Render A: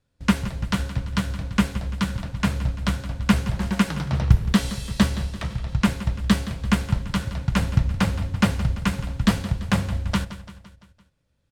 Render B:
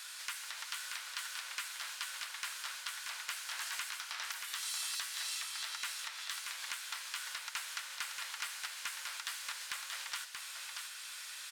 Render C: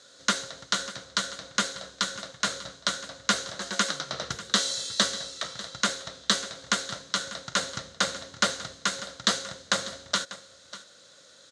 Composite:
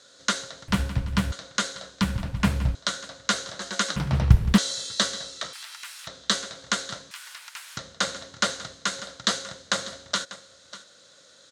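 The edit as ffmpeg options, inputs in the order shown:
-filter_complex "[0:a]asplit=3[a][b][c];[1:a]asplit=2[d][e];[2:a]asplit=6[f][g][h][i][j][k];[f]atrim=end=0.682[l];[a]atrim=start=0.678:end=1.322[m];[g]atrim=start=1.318:end=2.012[n];[b]atrim=start=2.008:end=2.752[o];[h]atrim=start=2.748:end=3.962[p];[c]atrim=start=3.958:end=4.582[q];[i]atrim=start=4.578:end=5.532[r];[d]atrim=start=5.528:end=6.072[s];[j]atrim=start=6.068:end=7.112[t];[e]atrim=start=7.108:end=7.772[u];[k]atrim=start=7.768[v];[l][m]acrossfade=d=0.004:c1=hsin:c2=hsin[w];[w][n]acrossfade=d=0.004:c1=hsin:c2=hsin[x];[x][o]acrossfade=d=0.004:c1=hsin:c2=hsin[y];[y][p]acrossfade=d=0.004:c1=hsin:c2=hsin[z];[z][q]acrossfade=d=0.004:c1=hsin:c2=hsin[aa];[aa][r]acrossfade=d=0.004:c1=hsin:c2=hsin[ab];[ab][s]acrossfade=d=0.004:c1=hsin:c2=hsin[ac];[ac][t]acrossfade=d=0.004:c1=hsin:c2=hsin[ad];[ad][u]acrossfade=d=0.004:c1=hsin:c2=hsin[ae];[ae][v]acrossfade=d=0.004:c1=hsin:c2=hsin"

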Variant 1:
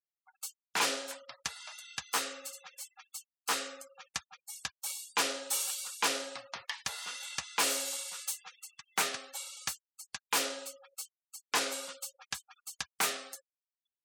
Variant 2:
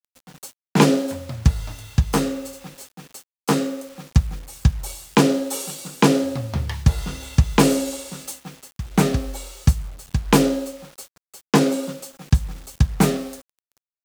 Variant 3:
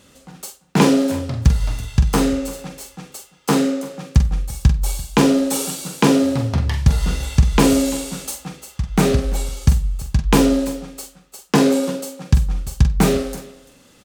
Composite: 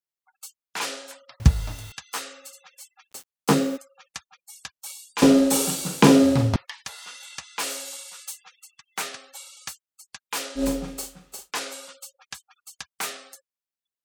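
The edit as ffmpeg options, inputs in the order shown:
-filter_complex "[1:a]asplit=2[a][b];[2:a]asplit=2[c][d];[0:a]asplit=5[e][f][g][h][i];[e]atrim=end=1.402[j];[a]atrim=start=1.398:end=1.922[k];[f]atrim=start=1.918:end=3.13[l];[b]atrim=start=3.11:end=3.78[m];[g]atrim=start=3.76:end=5.222[n];[c]atrim=start=5.218:end=6.562[o];[h]atrim=start=6.558:end=10.65[p];[d]atrim=start=10.55:end=11.52[q];[i]atrim=start=11.42[r];[j][k]acrossfade=d=0.004:c1=hsin:c2=hsin[s];[s][l]acrossfade=d=0.004:c1=hsin:c2=hsin[t];[t][m]acrossfade=d=0.02:c1=tri:c2=tri[u];[u][n]acrossfade=d=0.02:c1=tri:c2=tri[v];[v][o]acrossfade=d=0.004:c1=hsin:c2=hsin[w];[w][p]acrossfade=d=0.004:c1=hsin:c2=hsin[x];[x][q]acrossfade=d=0.1:c1=tri:c2=tri[y];[y][r]acrossfade=d=0.1:c1=tri:c2=tri"

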